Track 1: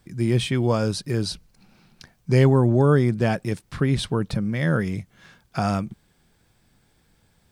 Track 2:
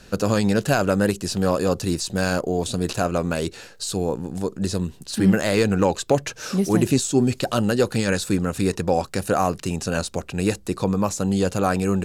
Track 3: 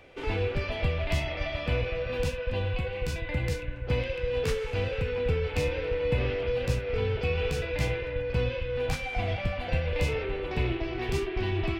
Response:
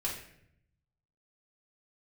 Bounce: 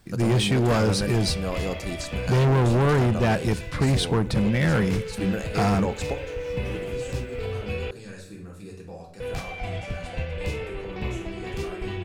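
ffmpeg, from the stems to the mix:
-filter_complex "[0:a]volume=2.5dB,asplit=3[a][b][c];[b]volume=-20.5dB[d];[1:a]volume=-11dB,asplit=2[e][f];[f]volume=-12.5dB[g];[2:a]adelay=450,volume=-2.5dB,asplit=3[h][i][j];[h]atrim=end=7.91,asetpts=PTS-STARTPTS,afade=t=out:st=7.906:d=0.004:c=hsin[k];[i]atrim=start=7.91:end=9.2,asetpts=PTS-STARTPTS,volume=0[l];[j]atrim=start=9.2,asetpts=PTS-STARTPTS,afade=t=in:d=0.004:c=hsin[m];[k][l][m]concat=n=3:v=0:a=1[n];[c]apad=whole_len=531222[o];[e][o]sidechaingate=range=-33dB:threshold=-54dB:ratio=16:detection=peak[p];[3:a]atrim=start_sample=2205[q];[d][g]amix=inputs=2:normalize=0[r];[r][q]afir=irnorm=-1:irlink=0[s];[a][p][n][s]amix=inputs=4:normalize=0,asoftclip=type=hard:threshold=-17dB"

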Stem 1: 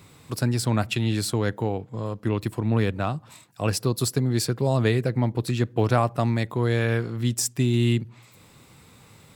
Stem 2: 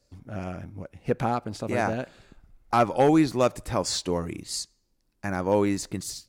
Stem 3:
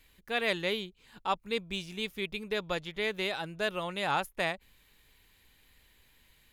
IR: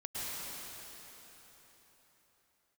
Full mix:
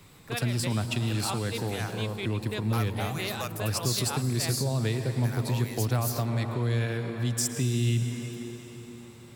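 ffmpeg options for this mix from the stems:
-filter_complex "[0:a]volume=-4.5dB,asplit=3[a][b][c];[b]volume=-8.5dB[d];[1:a]highpass=1.1k,aexciter=amount=6.6:drive=5.7:freq=11k,volume=-2.5dB[e];[2:a]volume=0.5dB[f];[c]apad=whole_len=292190[g];[f][g]sidechaincompress=threshold=-32dB:ratio=8:attack=16:release=113[h];[3:a]atrim=start_sample=2205[i];[d][i]afir=irnorm=-1:irlink=0[j];[a][e][h][j]amix=inputs=4:normalize=0,acrossover=split=160|3000[k][l][m];[l]acompressor=threshold=-32dB:ratio=3[n];[k][n][m]amix=inputs=3:normalize=0"

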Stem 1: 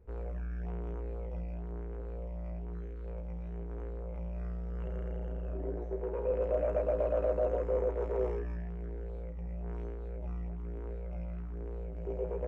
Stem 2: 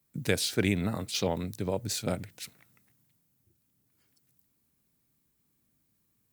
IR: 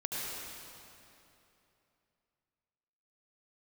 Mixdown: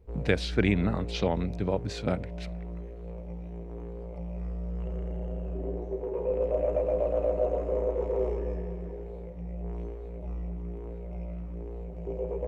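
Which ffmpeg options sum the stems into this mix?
-filter_complex "[0:a]equalizer=f=1.5k:w=2.3:g=-11,volume=0.5dB,asplit=2[a][b];[b]volume=-7.5dB[c];[1:a]lowpass=2.9k,volume=2.5dB[d];[2:a]atrim=start_sample=2205[e];[c][e]afir=irnorm=-1:irlink=0[f];[a][d][f]amix=inputs=3:normalize=0"

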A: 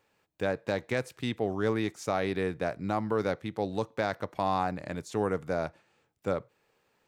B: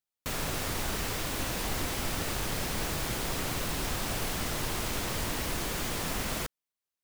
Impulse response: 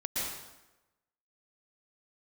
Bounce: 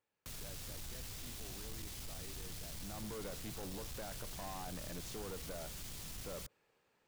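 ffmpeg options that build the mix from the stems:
-filter_complex "[0:a]alimiter=level_in=1dB:limit=-24dB:level=0:latency=1,volume=-1dB,volume=-5dB,afade=t=in:st=2.75:d=0.38:silence=0.237137[a];[1:a]acrossover=split=170|3000[b][c][d];[c]acompressor=threshold=-47dB:ratio=6[e];[b][e][d]amix=inputs=3:normalize=0,volume=-9.5dB[f];[a][f]amix=inputs=2:normalize=0,asoftclip=type=tanh:threshold=-40dB"

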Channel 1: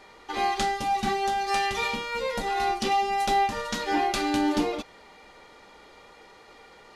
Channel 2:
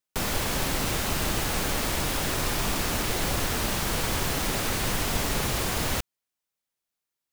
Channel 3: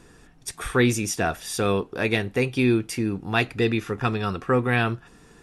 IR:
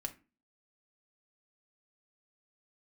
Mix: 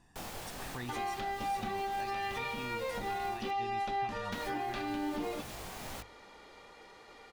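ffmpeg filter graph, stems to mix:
-filter_complex "[0:a]acrossover=split=3900[a][b];[b]acompressor=threshold=-52dB:ratio=4:attack=1:release=60[c];[a][c]amix=inputs=2:normalize=0,adelay=600,volume=-3.5dB[d];[1:a]bandreject=f=50:t=h:w=6,bandreject=f=100:t=h:w=6,flanger=delay=19:depth=2.4:speed=2,volume=-12dB,asplit=3[e][f][g];[e]atrim=end=3.51,asetpts=PTS-STARTPTS,afade=t=out:st=3.506:d=0.004:c=hsin[h];[f]atrim=start=3.51:end=4.32,asetpts=PTS-STARTPTS,volume=0[i];[g]atrim=start=4.32,asetpts=PTS-STARTPTS,afade=t=in:d=0.004:c=hsin[j];[h][i][j]concat=n=3:v=0:a=1[k];[2:a]aecho=1:1:1.1:0.65,volume=-16dB[l];[k][l]amix=inputs=2:normalize=0,equalizer=f=760:w=2.4:g=6.5,alimiter=level_in=7.5dB:limit=-24dB:level=0:latency=1:release=478,volume=-7.5dB,volume=0dB[m];[d][m]amix=inputs=2:normalize=0,alimiter=level_in=4dB:limit=-24dB:level=0:latency=1:release=200,volume=-4dB"

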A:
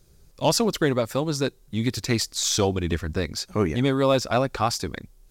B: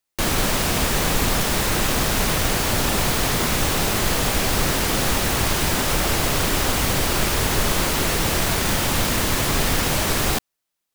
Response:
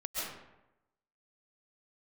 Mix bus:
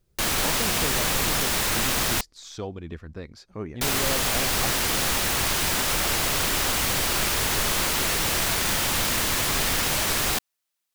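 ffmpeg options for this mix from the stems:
-filter_complex "[0:a]lowpass=f=2.3k:p=1,volume=-11dB[a];[1:a]tiltshelf=f=810:g=-4,volume=-4.5dB,asplit=3[b][c][d];[b]atrim=end=2.21,asetpts=PTS-STARTPTS,afade=t=out:st=2.206:d=0.004:c=hsin[e];[c]atrim=start=2.21:end=3.81,asetpts=PTS-STARTPTS,volume=0[f];[d]atrim=start=3.81,asetpts=PTS-STARTPTS,afade=t=in:d=0.004:c=hsin[g];[e][f][g]concat=n=3:v=0:a=1[h];[a][h]amix=inputs=2:normalize=0"

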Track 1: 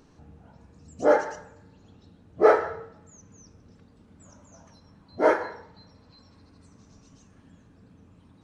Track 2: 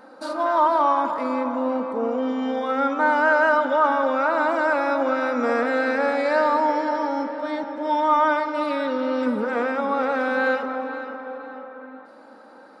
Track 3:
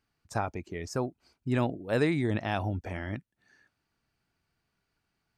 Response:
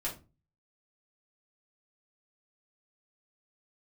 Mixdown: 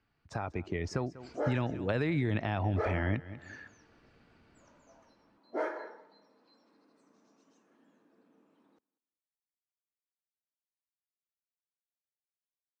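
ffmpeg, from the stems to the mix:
-filter_complex "[0:a]highpass=f=270:w=0.5412,highpass=f=270:w=1.3066,highshelf=f=2.9k:g=-10,adelay=350,volume=-8dB,asplit=3[a][b][c];[b]volume=-10dB[d];[c]volume=-23dB[e];[2:a]lowpass=3.4k,alimiter=level_in=1.5dB:limit=-24dB:level=0:latency=1:release=270,volume=-1.5dB,dynaudnorm=f=310:g=7:m=12dB,volume=3dB,asplit=2[f][g];[g]volume=-21dB[h];[3:a]atrim=start_sample=2205[i];[d][i]afir=irnorm=-1:irlink=0[j];[e][h]amix=inputs=2:normalize=0,aecho=0:1:193|386|579|772:1|0.24|0.0576|0.0138[k];[a][f][j][k]amix=inputs=4:normalize=0,acrossover=split=100|1700[l][m][n];[l]acompressor=threshold=-37dB:ratio=4[o];[m]acompressor=threshold=-32dB:ratio=4[p];[n]acompressor=threshold=-42dB:ratio=4[q];[o][p][q]amix=inputs=3:normalize=0"

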